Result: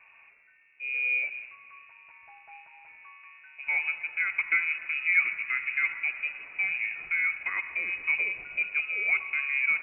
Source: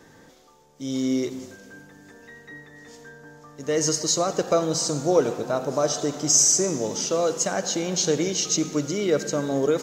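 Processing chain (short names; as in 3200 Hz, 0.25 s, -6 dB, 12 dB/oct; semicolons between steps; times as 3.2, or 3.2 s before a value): air absorption 450 m; inverted band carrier 2700 Hz; gain -3.5 dB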